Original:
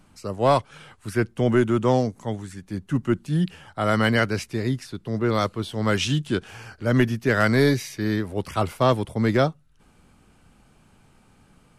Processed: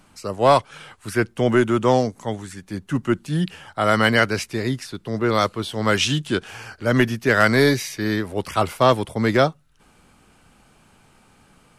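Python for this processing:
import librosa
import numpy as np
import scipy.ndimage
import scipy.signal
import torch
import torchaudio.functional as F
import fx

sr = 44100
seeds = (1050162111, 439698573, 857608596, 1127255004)

y = fx.low_shelf(x, sr, hz=330.0, db=-7.0)
y = F.gain(torch.from_numpy(y), 5.5).numpy()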